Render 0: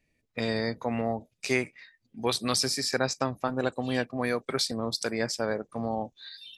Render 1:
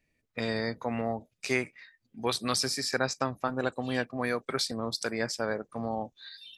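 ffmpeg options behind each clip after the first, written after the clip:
-af "equalizer=f=1400:t=o:w=1:g=3.5,volume=0.75"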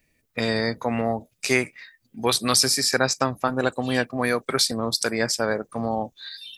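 -af "highshelf=f=8500:g=11.5,volume=2.24"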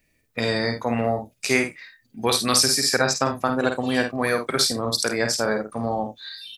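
-af "aecho=1:1:51|79:0.501|0.15"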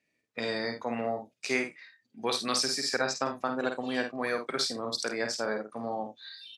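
-af "highpass=200,lowpass=6500,volume=0.398"

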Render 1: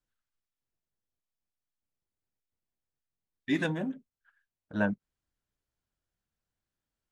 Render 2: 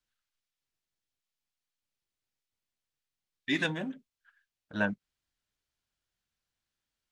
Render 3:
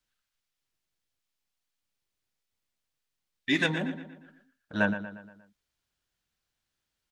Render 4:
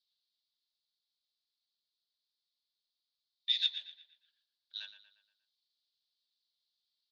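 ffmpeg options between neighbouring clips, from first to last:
-af "equalizer=f=3600:w=0.42:g=10,volume=0.668"
-filter_complex "[0:a]asplit=2[s0][s1];[s1]adelay=118,lowpass=f=4100:p=1,volume=0.282,asplit=2[s2][s3];[s3]adelay=118,lowpass=f=4100:p=1,volume=0.5,asplit=2[s4][s5];[s5]adelay=118,lowpass=f=4100:p=1,volume=0.5,asplit=2[s6][s7];[s7]adelay=118,lowpass=f=4100:p=1,volume=0.5,asplit=2[s8][s9];[s9]adelay=118,lowpass=f=4100:p=1,volume=0.5[s10];[s0][s2][s4][s6][s8][s10]amix=inputs=6:normalize=0,volume=1.5"
-af "asuperpass=centerf=4100:order=4:qfactor=3.3,volume=2.24"

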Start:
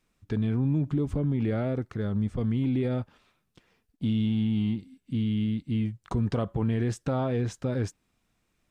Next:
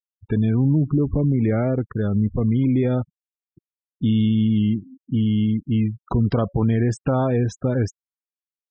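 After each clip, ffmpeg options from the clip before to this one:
-af "afftfilt=real='re*gte(hypot(re,im),0.0112)':imag='im*gte(hypot(re,im),0.0112)':win_size=1024:overlap=0.75,volume=2.37"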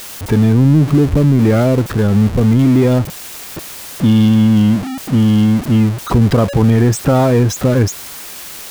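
-af "aeval=exprs='val(0)+0.5*0.0531*sgn(val(0))':c=same,volume=2.24"

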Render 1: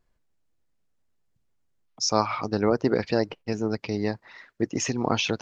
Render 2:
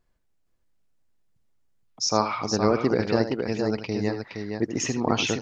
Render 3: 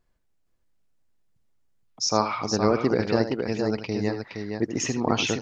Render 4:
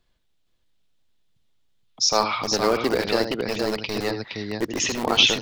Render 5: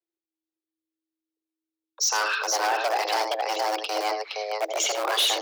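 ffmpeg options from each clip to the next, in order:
-af "aecho=1:1:79|467:0.282|0.531"
-af anull
-filter_complex "[0:a]equalizer=f=3500:w=1.6:g=13,acrossover=split=240|1800[s0][s1][s2];[s0]aeval=exprs='(mod(29.9*val(0)+1,2)-1)/29.9':c=same[s3];[s3][s1][s2]amix=inputs=3:normalize=0,volume=1.19"
-af "asoftclip=type=hard:threshold=0.106,agate=range=0.0447:threshold=0.00178:ratio=16:detection=peak,afreqshift=320"

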